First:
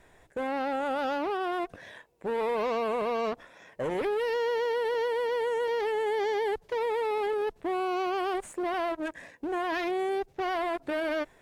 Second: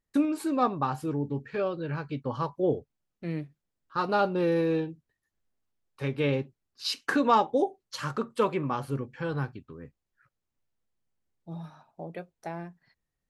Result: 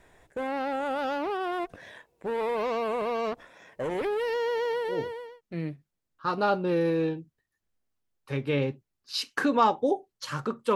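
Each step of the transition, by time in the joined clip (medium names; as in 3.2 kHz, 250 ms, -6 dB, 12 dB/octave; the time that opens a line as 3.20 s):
first
5.06 s: go over to second from 2.77 s, crossfade 0.70 s linear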